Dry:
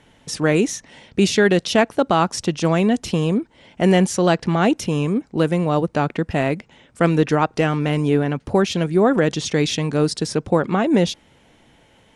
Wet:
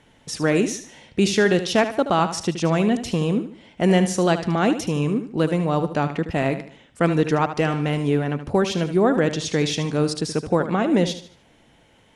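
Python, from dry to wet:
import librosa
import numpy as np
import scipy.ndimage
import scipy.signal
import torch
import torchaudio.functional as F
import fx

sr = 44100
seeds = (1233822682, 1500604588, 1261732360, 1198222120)

y = fx.echo_feedback(x, sr, ms=75, feedback_pct=36, wet_db=-11.0)
y = y * 10.0 ** (-2.5 / 20.0)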